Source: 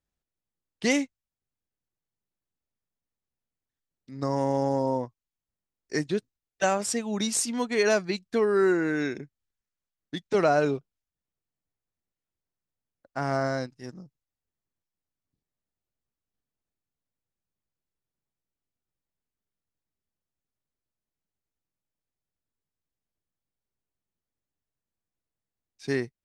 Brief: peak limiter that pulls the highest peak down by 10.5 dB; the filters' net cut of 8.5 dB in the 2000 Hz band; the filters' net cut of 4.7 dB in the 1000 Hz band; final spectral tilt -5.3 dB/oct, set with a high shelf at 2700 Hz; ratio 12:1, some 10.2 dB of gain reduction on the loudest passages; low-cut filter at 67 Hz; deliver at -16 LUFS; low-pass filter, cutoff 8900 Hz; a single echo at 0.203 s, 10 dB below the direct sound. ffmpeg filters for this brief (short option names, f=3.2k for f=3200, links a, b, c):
-af "highpass=67,lowpass=8.9k,equalizer=f=1k:t=o:g=-4.5,equalizer=f=2k:t=o:g=-6.5,highshelf=f=2.7k:g=-8,acompressor=threshold=-30dB:ratio=12,alimiter=level_in=6.5dB:limit=-24dB:level=0:latency=1,volume=-6.5dB,aecho=1:1:203:0.316,volume=24.5dB"